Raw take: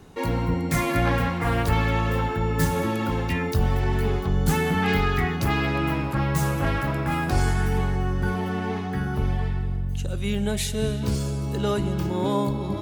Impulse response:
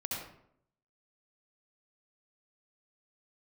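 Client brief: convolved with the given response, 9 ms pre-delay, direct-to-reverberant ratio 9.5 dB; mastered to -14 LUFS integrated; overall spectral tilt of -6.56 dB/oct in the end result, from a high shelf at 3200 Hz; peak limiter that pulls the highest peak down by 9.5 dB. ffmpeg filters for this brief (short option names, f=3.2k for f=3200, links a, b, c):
-filter_complex "[0:a]highshelf=f=3.2k:g=-5.5,alimiter=limit=-18.5dB:level=0:latency=1,asplit=2[a][b];[1:a]atrim=start_sample=2205,adelay=9[c];[b][c]afir=irnorm=-1:irlink=0,volume=-12dB[d];[a][d]amix=inputs=2:normalize=0,volume=12.5dB"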